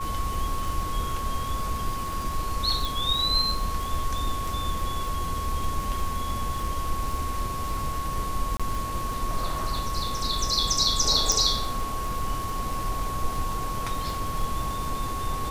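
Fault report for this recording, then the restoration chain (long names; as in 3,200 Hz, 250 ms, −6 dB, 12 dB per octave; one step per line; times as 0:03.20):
surface crackle 45 per second −30 dBFS
whistle 1,100 Hz −31 dBFS
0:02.85: click
0:08.57–0:08.60: drop-out 26 ms
0:11.32: click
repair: click removal
notch filter 1,100 Hz, Q 30
repair the gap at 0:08.57, 26 ms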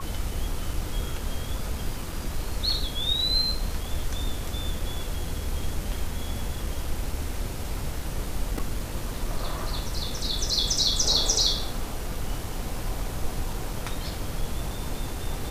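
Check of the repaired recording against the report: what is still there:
0:11.32: click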